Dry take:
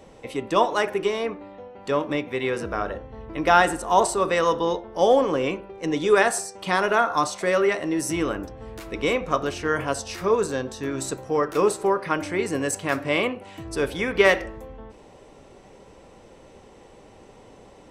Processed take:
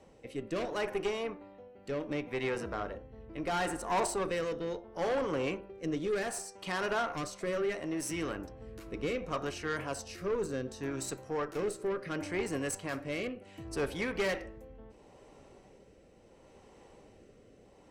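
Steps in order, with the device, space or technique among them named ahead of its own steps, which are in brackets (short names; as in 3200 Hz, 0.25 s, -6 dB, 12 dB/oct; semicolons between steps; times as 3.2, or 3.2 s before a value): overdriven rotary cabinet (tube stage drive 20 dB, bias 0.5; rotary speaker horn 0.7 Hz); notch 3500 Hz, Q 15; gain -5 dB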